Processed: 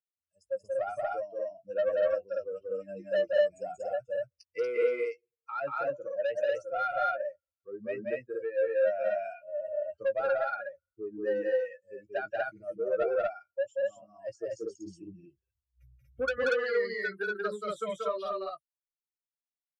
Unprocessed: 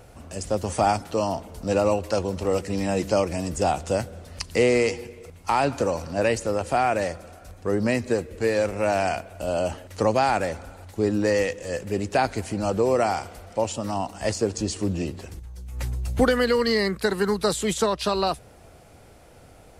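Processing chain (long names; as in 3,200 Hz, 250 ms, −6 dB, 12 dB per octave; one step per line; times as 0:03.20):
spectral dynamics exaggerated over time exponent 3
in parallel at −2 dB: brickwall limiter −22.5 dBFS, peak gain reduction 11 dB
on the sum: pair of resonant band-passes 910 Hz, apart 1.3 octaves
soft clipping −26 dBFS, distortion −11 dB
double-tracking delay 15 ms −10.5 dB
on a send: loudspeakers that aren't time-aligned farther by 63 metres −2 dB, 81 metres 0 dB
on the sum: level +2 dB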